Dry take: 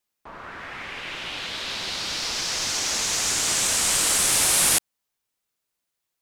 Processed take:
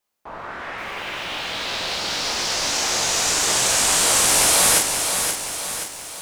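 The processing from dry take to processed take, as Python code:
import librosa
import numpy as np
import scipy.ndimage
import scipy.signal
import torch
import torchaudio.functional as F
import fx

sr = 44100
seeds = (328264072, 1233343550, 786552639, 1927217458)

y = fx.peak_eq(x, sr, hz=690.0, db=6.0, octaves=1.7)
y = fx.room_early_taps(y, sr, ms=(17, 42), db=(-5.0, -3.5))
y = fx.echo_crushed(y, sr, ms=526, feedback_pct=55, bits=7, wet_db=-6.0)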